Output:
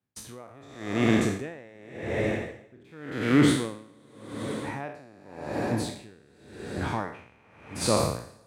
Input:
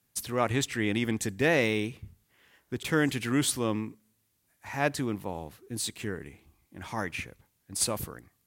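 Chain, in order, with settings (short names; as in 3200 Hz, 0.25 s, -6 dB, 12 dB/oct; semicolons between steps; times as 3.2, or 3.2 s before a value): spectral trails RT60 1.81 s; LPF 1300 Hz 6 dB/oct; gate with hold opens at -47 dBFS; reverse; upward compressor, threshold -38 dBFS; reverse; diffused feedback echo 0.491 s, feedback 46%, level -11.5 dB; in parallel at +0.5 dB: compressor, threshold -33 dBFS, peak gain reduction 13.5 dB; on the sum: HPF 63 Hz; dB-linear tremolo 0.88 Hz, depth 31 dB; gain +4 dB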